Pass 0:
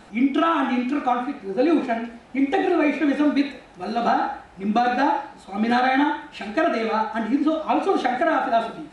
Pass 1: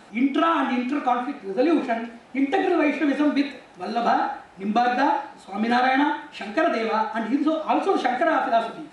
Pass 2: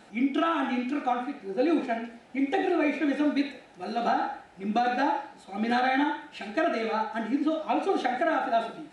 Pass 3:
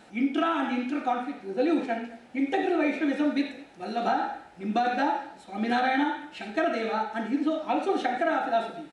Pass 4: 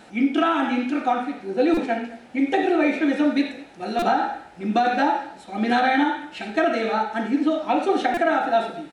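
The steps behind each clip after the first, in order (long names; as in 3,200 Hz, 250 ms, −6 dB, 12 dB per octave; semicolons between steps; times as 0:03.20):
high-pass filter 180 Hz 6 dB per octave
parametric band 1,100 Hz −7.5 dB 0.29 octaves; level −4.5 dB
single-tap delay 215 ms −21.5 dB
buffer that repeats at 0:01.74/0:03.99/0:08.14, samples 128, times 10; level +5.5 dB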